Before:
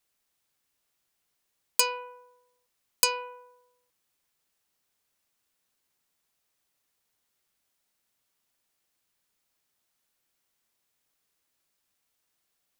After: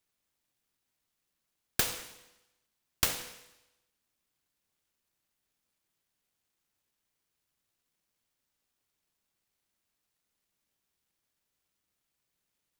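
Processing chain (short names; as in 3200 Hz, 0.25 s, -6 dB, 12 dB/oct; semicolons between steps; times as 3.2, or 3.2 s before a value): careless resampling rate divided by 3×, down none, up hold; noise-modulated delay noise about 2600 Hz, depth 0.49 ms; gain -4.5 dB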